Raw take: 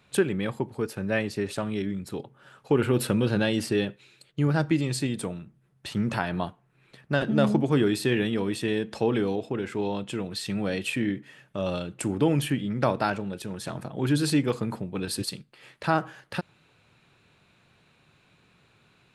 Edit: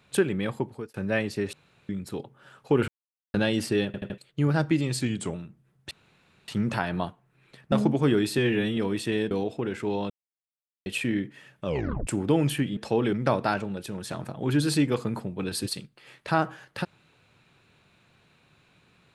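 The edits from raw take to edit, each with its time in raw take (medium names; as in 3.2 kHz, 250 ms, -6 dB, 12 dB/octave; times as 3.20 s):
0.65–0.94 s: fade out
1.53–1.89 s: room tone
2.88–3.34 s: mute
3.86 s: stutter in place 0.08 s, 4 plays
5.01–5.31 s: speed 91%
5.88 s: insert room tone 0.57 s
7.12–7.41 s: delete
8.07–8.33 s: stretch 1.5×
8.87–9.23 s: move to 12.69 s
10.02–10.78 s: mute
11.58 s: tape stop 0.41 s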